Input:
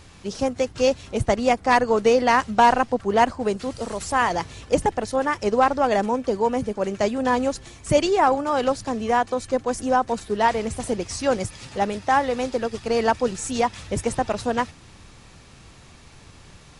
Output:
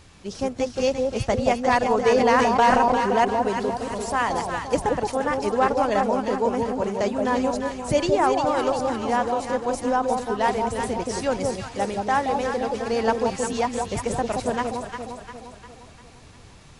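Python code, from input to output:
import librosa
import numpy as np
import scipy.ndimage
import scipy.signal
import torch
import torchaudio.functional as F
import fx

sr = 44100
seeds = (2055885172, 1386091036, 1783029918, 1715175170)

p1 = x + fx.echo_alternate(x, sr, ms=175, hz=940.0, feedback_pct=70, wet_db=-2.5, dry=0)
p2 = fx.sustainer(p1, sr, db_per_s=23.0, at=(2.1, 3.2))
y = p2 * 10.0 ** (-3.0 / 20.0)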